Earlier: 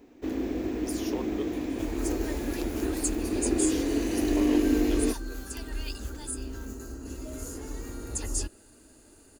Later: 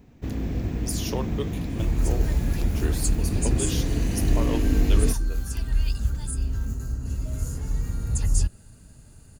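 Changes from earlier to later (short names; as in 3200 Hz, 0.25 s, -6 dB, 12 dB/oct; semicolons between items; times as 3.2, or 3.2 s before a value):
speech +8.0 dB; master: add resonant low shelf 220 Hz +12 dB, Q 3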